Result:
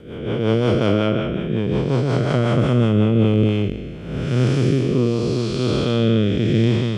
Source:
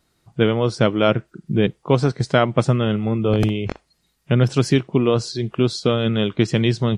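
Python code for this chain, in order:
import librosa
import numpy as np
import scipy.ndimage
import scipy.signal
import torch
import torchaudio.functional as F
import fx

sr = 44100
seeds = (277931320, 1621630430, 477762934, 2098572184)

y = fx.spec_blur(x, sr, span_ms=477.0)
y = fx.rotary_switch(y, sr, hz=5.5, then_hz=0.75, switch_at_s=2.98)
y = F.gain(torch.from_numpy(y), 6.5).numpy()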